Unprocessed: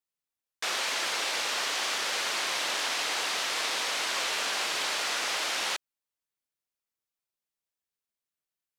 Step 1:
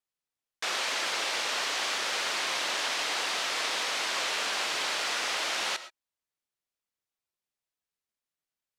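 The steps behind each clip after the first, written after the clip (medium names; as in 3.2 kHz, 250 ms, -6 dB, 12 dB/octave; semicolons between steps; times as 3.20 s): treble shelf 11 kHz -8 dB; on a send at -13 dB: reverberation, pre-delay 65 ms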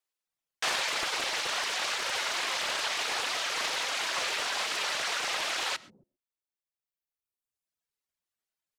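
reverb removal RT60 1.7 s; bands offset in time highs, lows 270 ms, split 250 Hz; loudspeaker Doppler distortion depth 0.37 ms; trim +3 dB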